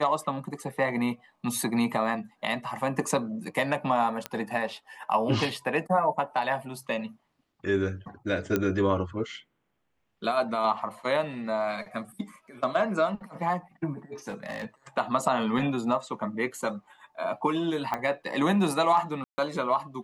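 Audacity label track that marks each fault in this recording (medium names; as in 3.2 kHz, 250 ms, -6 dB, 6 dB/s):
4.260000	4.260000	pop -15 dBFS
8.560000	8.560000	pop -12 dBFS
14.280000	14.650000	clipped -30 dBFS
17.940000	17.940000	pop -16 dBFS
19.240000	19.380000	dropout 140 ms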